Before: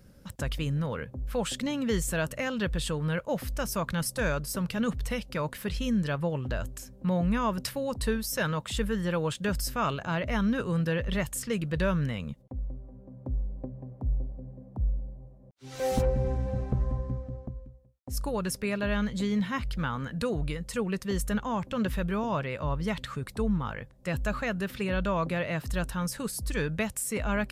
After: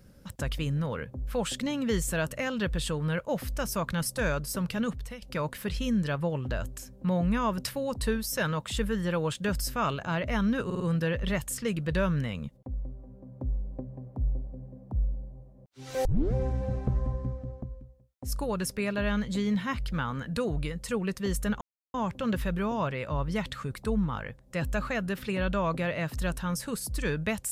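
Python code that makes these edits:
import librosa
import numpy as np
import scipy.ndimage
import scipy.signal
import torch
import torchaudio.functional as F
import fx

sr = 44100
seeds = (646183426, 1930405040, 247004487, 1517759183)

y = fx.edit(x, sr, fx.fade_out_to(start_s=4.76, length_s=0.46, floor_db=-15.5),
    fx.stutter(start_s=10.65, slice_s=0.05, count=4),
    fx.tape_start(start_s=15.9, length_s=0.29),
    fx.insert_silence(at_s=21.46, length_s=0.33), tone=tone)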